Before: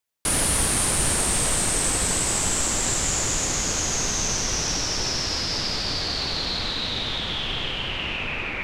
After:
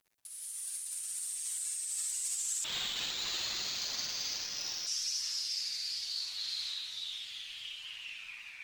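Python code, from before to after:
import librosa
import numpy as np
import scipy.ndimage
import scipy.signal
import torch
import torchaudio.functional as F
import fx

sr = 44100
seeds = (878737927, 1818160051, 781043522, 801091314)

y = F.preemphasis(torch.from_numpy(x), 0.97).numpy()
y = fx.dereverb_blind(y, sr, rt60_s=1.1)
y = fx.tone_stack(y, sr, knobs='5-5-5')
y = fx.over_compress(y, sr, threshold_db=-36.0, ratio=-0.5)
y = fx.dmg_crackle(y, sr, seeds[0], per_s=37.0, level_db=-52.0)
y = fx.chorus_voices(y, sr, voices=2, hz=0.38, base_ms=10, depth_ms=1.3, mix_pct=55)
y = fx.vibrato(y, sr, rate_hz=12.0, depth_cents=30.0)
y = fx.echo_multitap(y, sr, ms=(46, 64), db=(-6.0, -4.0))
y = fx.resample_linear(y, sr, factor=4, at=(2.64, 4.87))
y = y * librosa.db_to_amplitude(2.5)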